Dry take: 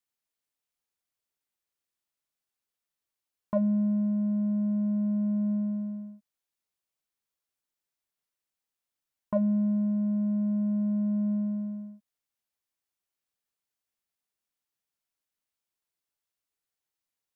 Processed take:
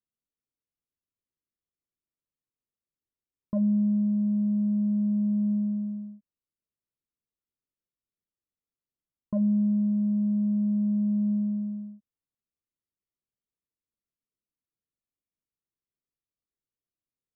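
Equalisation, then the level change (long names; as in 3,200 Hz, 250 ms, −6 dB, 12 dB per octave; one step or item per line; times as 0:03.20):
moving average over 55 samples
+3.0 dB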